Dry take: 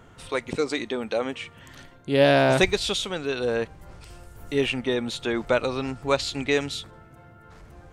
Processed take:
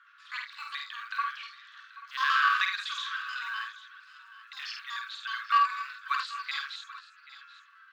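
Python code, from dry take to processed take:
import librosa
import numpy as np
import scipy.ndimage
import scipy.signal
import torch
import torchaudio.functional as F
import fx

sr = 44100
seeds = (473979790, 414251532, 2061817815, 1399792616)

p1 = fx.pitch_trill(x, sr, semitones=11.0, every_ms=62)
p2 = scipy.signal.sosfilt(scipy.signal.butter(2, 2000.0, 'lowpass', fs=sr, output='sos'), p1)
p3 = fx.quant_float(p2, sr, bits=6)
p4 = scipy.signal.sosfilt(scipy.signal.cheby1(6, 9, 1100.0, 'highpass', fs=sr, output='sos'), p3)
p5 = p4 + fx.echo_multitap(p4, sr, ms=(50, 78, 244, 783, 836), db=(-4.0, -9.5, -18.5, -18.0, -17.5), dry=0)
y = p5 * librosa.db_to_amplitude(5.5)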